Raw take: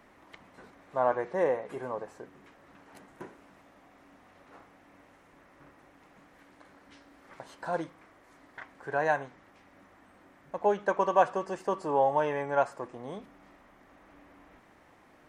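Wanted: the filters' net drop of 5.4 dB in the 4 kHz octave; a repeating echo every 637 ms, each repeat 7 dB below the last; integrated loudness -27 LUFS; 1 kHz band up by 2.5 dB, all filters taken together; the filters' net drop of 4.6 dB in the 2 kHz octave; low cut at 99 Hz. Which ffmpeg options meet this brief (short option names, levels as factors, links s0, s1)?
-af "highpass=99,equalizer=f=1000:t=o:g=5,equalizer=f=2000:t=o:g=-8.5,equalizer=f=4000:t=o:g=-4,aecho=1:1:637|1274|1911|2548|3185:0.447|0.201|0.0905|0.0407|0.0183,volume=1.33"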